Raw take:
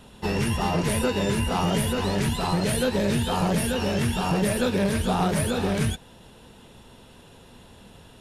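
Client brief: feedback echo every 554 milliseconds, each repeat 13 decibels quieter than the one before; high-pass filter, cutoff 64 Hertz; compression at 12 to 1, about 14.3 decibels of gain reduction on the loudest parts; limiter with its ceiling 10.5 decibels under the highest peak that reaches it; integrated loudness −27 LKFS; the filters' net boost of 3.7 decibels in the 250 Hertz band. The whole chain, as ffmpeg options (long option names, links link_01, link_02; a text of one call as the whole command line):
ffmpeg -i in.wav -af "highpass=64,equalizer=frequency=250:width_type=o:gain=5,acompressor=threshold=-32dB:ratio=12,alimiter=level_in=8.5dB:limit=-24dB:level=0:latency=1,volume=-8.5dB,aecho=1:1:554|1108|1662:0.224|0.0493|0.0108,volume=14.5dB" out.wav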